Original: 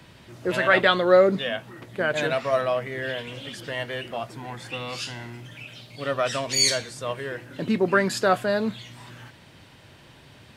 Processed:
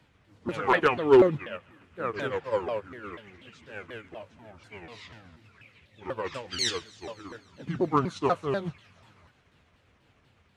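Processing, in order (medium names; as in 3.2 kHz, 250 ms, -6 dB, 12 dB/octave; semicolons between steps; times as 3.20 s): sawtooth pitch modulation -8 st, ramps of 244 ms; on a send: feedback echo behind a high-pass 136 ms, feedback 76%, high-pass 1.7 kHz, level -17 dB; on the sum: wavefolder -9 dBFS; treble shelf 5.9 kHz -6 dB; upward expansion 1.5:1, over -38 dBFS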